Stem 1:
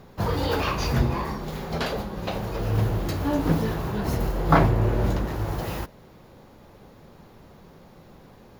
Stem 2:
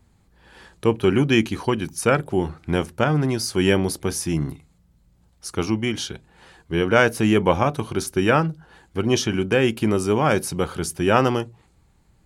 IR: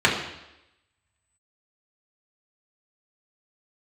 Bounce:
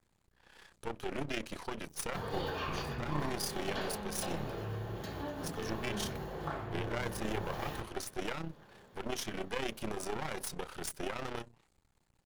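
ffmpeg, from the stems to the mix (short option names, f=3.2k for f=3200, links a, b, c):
-filter_complex "[0:a]acompressor=threshold=-24dB:ratio=10,adelay=1950,volume=-14dB,asplit=2[a][b];[b]volume=-14dB[c];[1:a]alimiter=limit=-13dB:level=0:latency=1:release=132,aeval=exprs='max(val(0),0)':c=same,tremolo=f=32:d=0.621,volume=-3dB[d];[2:a]atrim=start_sample=2205[e];[c][e]afir=irnorm=-1:irlink=0[f];[a][d][f]amix=inputs=3:normalize=0,lowshelf=f=410:g=-7"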